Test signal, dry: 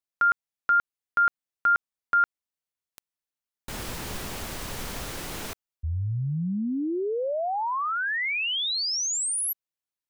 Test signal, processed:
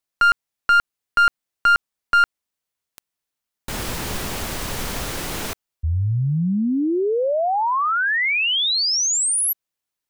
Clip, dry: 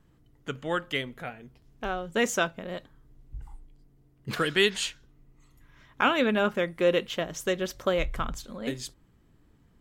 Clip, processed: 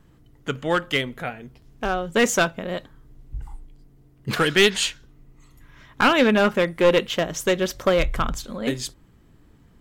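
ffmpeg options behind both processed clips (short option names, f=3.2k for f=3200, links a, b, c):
-af "aeval=exprs='clip(val(0),-1,0.0794)':c=same,volume=7.5dB"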